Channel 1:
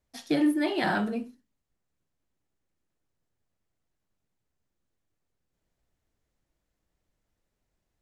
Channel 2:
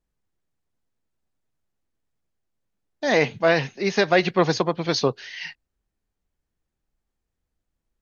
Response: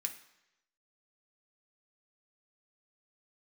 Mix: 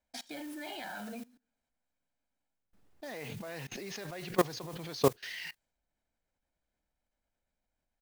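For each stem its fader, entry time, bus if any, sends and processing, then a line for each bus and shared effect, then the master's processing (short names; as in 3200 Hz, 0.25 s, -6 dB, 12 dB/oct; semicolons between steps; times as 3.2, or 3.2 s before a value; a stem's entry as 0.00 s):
-5.5 dB, 0.00 s, send -16 dB, comb 1.3 ms, depth 69%; compressor 1.5:1, threshold -45 dBFS, peak gain reduction 9 dB; graphic EQ 125/250/500/1000/2000/4000/8000 Hz -8/+8/+7/+6/+9/+8/+10 dB
2.44 s -17 dB -> 3.23 s -8.5 dB -> 4.04 s -8.5 dB -> 4.84 s -2 dB, 0.00 s, no send, backwards sustainer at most 87 dB/s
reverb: on, RT60 0.90 s, pre-delay 3 ms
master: modulation noise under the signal 14 dB; level quantiser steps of 21 dB; mismatched tape noise reduction decoder only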